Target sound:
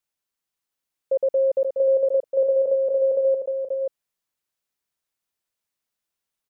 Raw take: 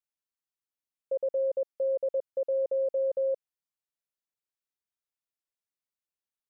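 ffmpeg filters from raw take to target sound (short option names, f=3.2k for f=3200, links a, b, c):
-filter_complex "[0:a]asplit=3[a][b][c];[a]afade=t=out:st=2.23:d=0.02[d];[b]asplit=2[e][f];[f]adelay=38,volume=-10dB[g];[e][g]amix=inputs=2:normalize=0,afade=t=in:st=2.23:d=0.02,afade=t=out:st=3.27:d=0.02[h];[c]afade=t=in:st=3.27:d=0.02[i];[d][h][i]amix=inputs=3:normalize=0,aecho=1:1:533:0.562,volume=8dB"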